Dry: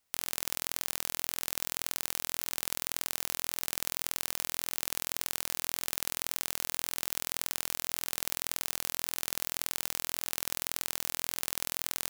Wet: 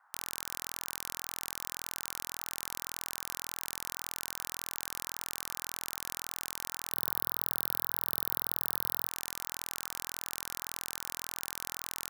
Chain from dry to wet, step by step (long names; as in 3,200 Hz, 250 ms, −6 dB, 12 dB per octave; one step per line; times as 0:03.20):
0:06.93–0:09.09: graphic EQ with 10 bands 125 Hz +8 dB, 500 Hz +6 dB, 1,000 Hz −8 dB, 2,000 Hz −9 dB, 4,000 Hz +4 dB, 8,000 Hz −8 dB, 16,000 Hz +11 dB
leveller curve on the samples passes 3
noise in a band 780–1,600 Hz −59 dBFS
level −8 dB